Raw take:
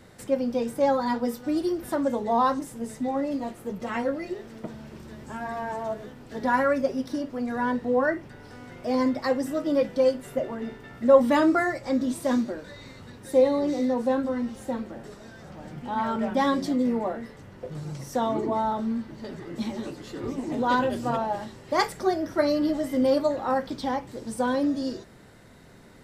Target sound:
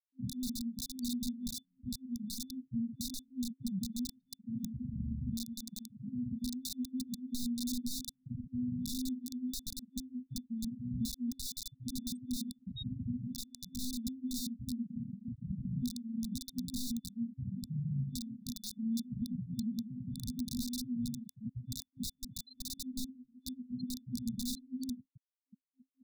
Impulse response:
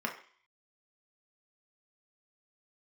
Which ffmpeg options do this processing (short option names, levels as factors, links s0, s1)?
-filter_complex "[0:a]asplit=2[s0][s1];[s1]lowpass=9100[s2];[1:a]atrim=start_sample=2205[s3];[s2][s3]afir=irnorm=-1:irlink=0,volume=0.075[s4];[s0][s4]amix=inputs=2:normalize=0,acrossover=split=1400|2800[s5][s6][s7];[s5]acompressor=threshold=0.0224:ratio=4[s8];[s6]acompressor=threshold=0.00501:ratio=4[s9];[s7]acompressor=threshold=0.00355:ratio=4[s10];[s8][s9][s10]amix=inputs=3:normalize=0,alimiter=level_in=1.5:limit=0.0631:level=0:latency=1:release=316,volume=0.668,equalizer=f=770:w=0.59:g=-2,aecho=1:1:16|57:0.473|0.158,afftfilt=real='re*gte(hypot(re,im),0.0316)':imag='im*gte(hypot(re,im),0.0316)':win_size=1024:overlap=0.75,highshelf=f=5900:g=-2.5,aeval=exprs='(mod(31.6*val(0)+1,2)-1)/31.6':c=same,acompressor=threshold=0.00708:ratio=6,afftfilt=real='re*(1-between(b*sr/4096,260,3500))':imag='im*(1-between(b*sr/4096,260,3500))':win_size=4096:overlap=0.75,volume=3.55"